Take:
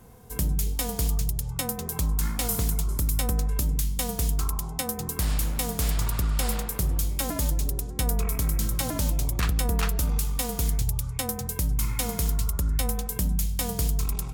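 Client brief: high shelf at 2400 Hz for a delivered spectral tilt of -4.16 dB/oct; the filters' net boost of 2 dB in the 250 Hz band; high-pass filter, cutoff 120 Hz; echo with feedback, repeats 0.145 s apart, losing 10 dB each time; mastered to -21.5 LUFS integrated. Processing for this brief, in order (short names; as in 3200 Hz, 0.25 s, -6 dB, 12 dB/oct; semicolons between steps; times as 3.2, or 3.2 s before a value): HPF 120 Hz; bell 250 Hz +3.5 dB; high shelf 2400 Hz -6 dB; feedback echo 0.145 s, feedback 32%, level -10 dB; gain +11 dB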